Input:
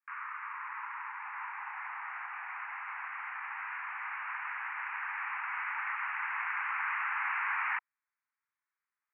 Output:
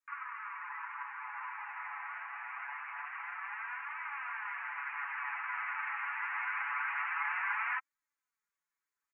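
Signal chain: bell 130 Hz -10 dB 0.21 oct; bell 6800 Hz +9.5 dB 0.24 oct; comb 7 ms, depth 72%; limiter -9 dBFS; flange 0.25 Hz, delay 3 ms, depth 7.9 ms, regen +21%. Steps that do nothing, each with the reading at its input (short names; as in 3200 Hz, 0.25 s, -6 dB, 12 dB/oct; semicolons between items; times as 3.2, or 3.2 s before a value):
bell 130 Hz: input band starts at 680 Hz; bell 6800 Hz: input band ends at 3000 Hz; limiter -9 dBFS: input peak -18.5 dBFS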